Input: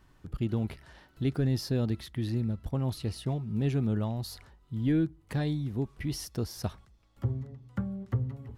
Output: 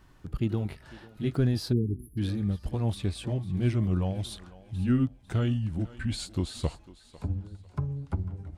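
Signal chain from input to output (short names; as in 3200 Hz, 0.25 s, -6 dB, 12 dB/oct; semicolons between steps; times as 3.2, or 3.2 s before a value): gliding pitch shift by -6 st starting unshifted; thinning echo 0.499 s, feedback 29%, high-pass 320 Hz, level -16.5 dB; spectral delete 1.72–2.18, 470–9900 Hz; gain +3.5 dB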